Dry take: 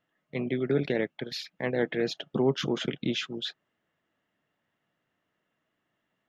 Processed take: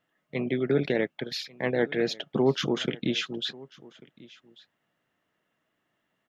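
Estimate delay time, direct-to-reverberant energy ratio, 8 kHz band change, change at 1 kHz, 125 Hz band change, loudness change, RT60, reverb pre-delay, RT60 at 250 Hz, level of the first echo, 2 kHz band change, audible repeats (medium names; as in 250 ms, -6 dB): 1142 ms, no reverb, no reading, +2.5 dB, +1.0 dB, +2.0 dB, no reverb, no reverb, no reverb, -22.5 dB, +2.5 dB, 1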